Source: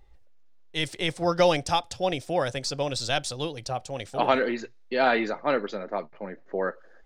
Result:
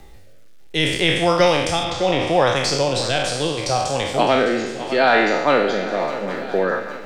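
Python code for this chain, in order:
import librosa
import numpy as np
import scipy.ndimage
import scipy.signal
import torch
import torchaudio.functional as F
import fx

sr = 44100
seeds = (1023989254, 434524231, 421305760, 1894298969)

y = fx.spec_trails(x, sr, decay_s=0.88)
y = fx.lowpass(y, sr, hz=5000.0, slope=12, at=(1.84, 2.56))
y = fx.quant_dither(y, sr, seeds[0], bits=12, dither='none')
y = fx.rotary_switch(y, sr, hz=0.7, then_hz=6.0, switch_at_s=5.68)
y = fx.echo_swing(y, sr, ms=808, ratio=3, feedback_pct=43, wet_db=-17)
y = fx.band_squash(y, sr, depth_pct=40)
y = F.gain(torch.from_numpy(y), 7.5).numpy()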